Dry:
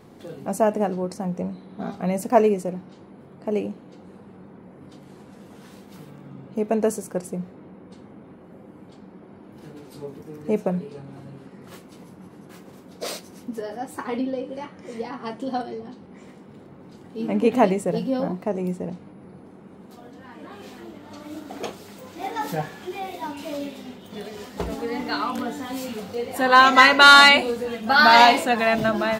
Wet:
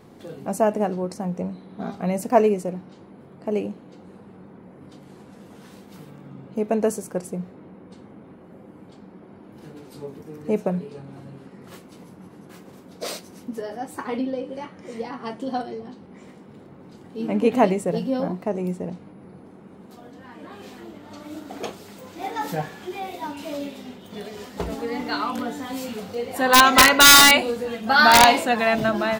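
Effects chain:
wrap-around overflow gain 3.5 dB

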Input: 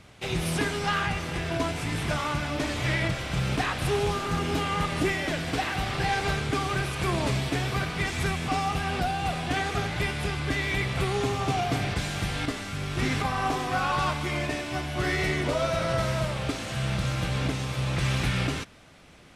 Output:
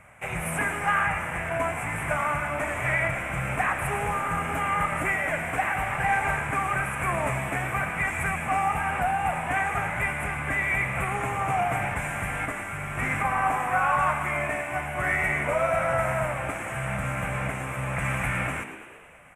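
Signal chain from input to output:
drawn EQ curve 150 Hz 0 dB, 380 Hz −7 dB, 580 Hz +7 dB, 2,300 Hz +9 dB, 4,400 Hz −27 dB, 8,000 Hz +6 dB
echo with shifted repeats 111 ms, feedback 63%, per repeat +67 Hz, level −12 dB
level −4 dB

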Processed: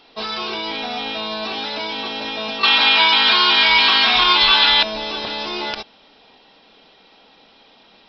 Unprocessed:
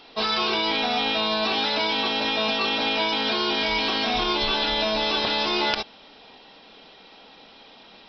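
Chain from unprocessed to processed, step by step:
0:02.63–0:04.83: flat-topped bell 2,100 Hz +14 dB 2.8 octaves
level −2 dB

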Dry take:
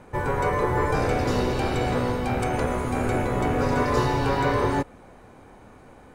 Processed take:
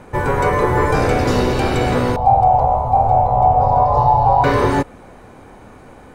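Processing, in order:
0:02.16–0:04.44: drawn EQ curve 120 Hz 0 dB, 330 Hz −22 dB, 790 Hz +14 dB, 1,600 Hz −25 dB, 4,400 Hz −17 dB, 7,300 Hz −25 dB
level +7.5 dB

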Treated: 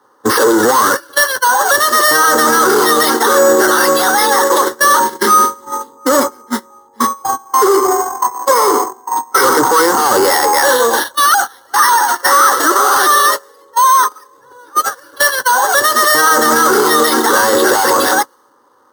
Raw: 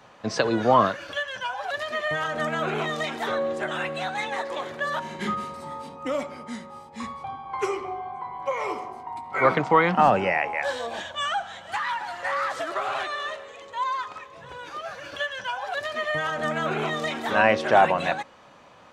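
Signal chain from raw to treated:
Butterworth low-pass 7,500 Hz
bad sample-rate conversion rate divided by 6×, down none, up hold
tube saturation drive 28 dB, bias 0.2
noise gate −34 dBFS, range −29 dB
high-pass filter 210 Hz 12 dB per octave
phaser with its sweep stopped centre 660 Hz, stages 6
boost into a limiter +34.5 dB
one half of a high-frequency compander decoder only
level −1 dB

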